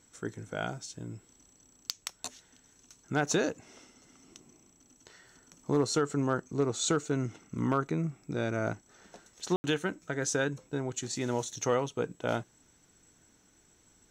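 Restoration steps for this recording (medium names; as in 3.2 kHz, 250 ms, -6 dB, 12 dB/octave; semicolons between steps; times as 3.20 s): room tone fill 9.56–9.64 s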